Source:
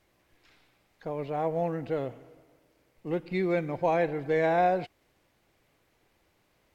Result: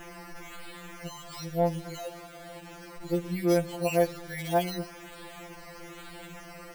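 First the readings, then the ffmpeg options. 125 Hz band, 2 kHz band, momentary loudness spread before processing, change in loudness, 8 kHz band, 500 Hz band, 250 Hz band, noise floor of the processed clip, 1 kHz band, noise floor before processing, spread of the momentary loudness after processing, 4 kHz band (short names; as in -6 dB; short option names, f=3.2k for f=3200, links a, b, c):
+2.0 dB, -2.5 dB, 13 LU, -1.5 dB, n/a, -1.5 dB, +1.5 dB, -47 dBFS, -4.5 dB, -70 dBFS, 18 LU, +9.0 dB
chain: -af "aeval=exprs='val(0)+0.5*0.02*sgn(val(0))':c=same,acrusher=samples=10:mix=1:aa=0.000001:lfo=1:lforange=6:lforate=1.1,afftfilt=real='re*2.83*eq(mod(b,8),0)':imag='im*2.83*eq(mod(b,8),0)':win_size=2048:overlap=0.75,volume=-3dB"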